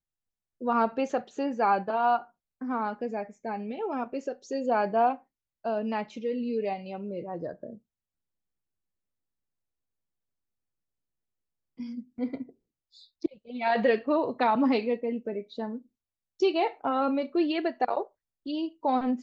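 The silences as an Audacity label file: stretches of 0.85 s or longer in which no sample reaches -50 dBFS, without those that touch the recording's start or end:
7.780000	11.780000	silence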